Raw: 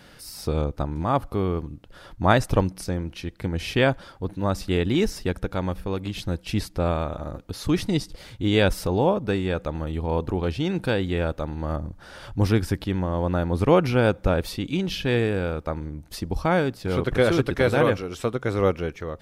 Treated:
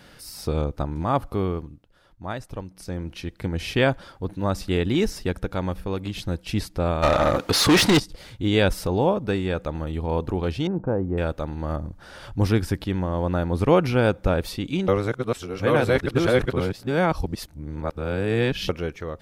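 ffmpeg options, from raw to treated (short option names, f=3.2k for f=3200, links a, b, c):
-filter_complex "[0:a]asplit=3[a][b][c];[a]afade=t=out:st=7.02:d=0.02[d];[b]asplit=2[e][f];[f]highpass=f=720:p=1,volume=31dB,asoftclip=type=tanh:threshold=-8dB[g];[e][g]amix=inputs=2:normalize=0,lowpass=f=5.1k:p=1,volume=-6dB,afade=t=in:st=7.02:d=0.02,afade=t=out:st=7.98:d=0.02[h];[c]afade=t=in:st=7.98:d=0.02[i];[d][h][i]amix=inputs=3:normalize=0,asettb=1/sr,asplit=3[j][k][l];[j]atrim=end=10.674[m];[k]atrim=start=10.67:end=11.18,asetpts=PTS-STARTPTS,afade=t=in:d=0.004:c=qsin,afade=t=out:st=0.506:d=0.004:c=qsin,lowpass=f=1.1k:w=0.5412,lowpass=f=1.1k:w=1.3066[n];[l]atrim=start=11.176[o];[m][n]acrossfade=d=0.004:c1=hsin:c2=qsin[p];[p][o]acrossfade=d=0.004:c1=qsin:c2=hsin,asplit=5[q][r][s][t][u];[q]atrim=end=1.89,asetpts=PTS-STARTPTS,afade=t=out:st=1.44:d=0.45:silence=0.211349[v];[r]atrim=start=1.89:end=2.68,asetpts=PTS-STARTPTS,volume=-13.5dB[w];[s]atrim=start=2.68:end=14.882,asetpts=PTS-STARTPTS,afade=t=in:d=0.45:silence=0.211349[x];[t]atrim=start=14.878:end=18.692,asetpts=PTS-STARTPTS,areverse[y];[u]atrim=start=18.688[z];[v][w][x]concat=n=3:v=0:a=1[aa];[aa][y]acrossfade=d=0.004:c1=hsin:c2=hsin[ab];[ab][z]acrossfade=d=0.004:c1=hsin:c2=hsin"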